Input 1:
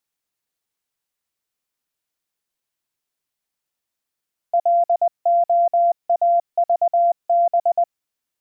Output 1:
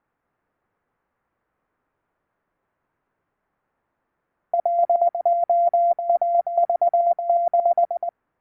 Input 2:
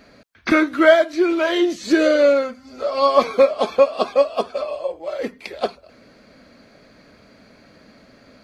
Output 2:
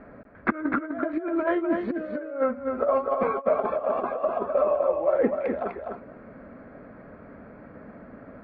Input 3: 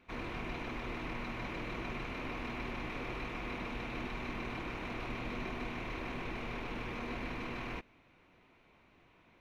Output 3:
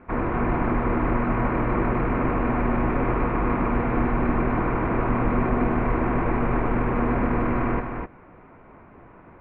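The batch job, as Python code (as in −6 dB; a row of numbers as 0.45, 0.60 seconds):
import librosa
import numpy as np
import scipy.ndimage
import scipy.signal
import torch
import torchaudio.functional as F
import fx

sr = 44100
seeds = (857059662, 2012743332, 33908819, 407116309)

p1 = scipy.signal.sosfilt(scipy.signal.butter(4, 1600.0, 'lowpass', fs=sr, output='sos'), x)
p2 = fx.over_compress(p1, sr, threshold_db=-23.0, ratio=-0.5)
p3 = p2 + fx.echo_single(p2, sr, ms=251, db=-5.5, dry=0)
y = p3 * 10.0 ** (-9 / 20.0) / np.max(np.abs(p3))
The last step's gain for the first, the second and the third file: +6.0, −2.0, +17.0 decibels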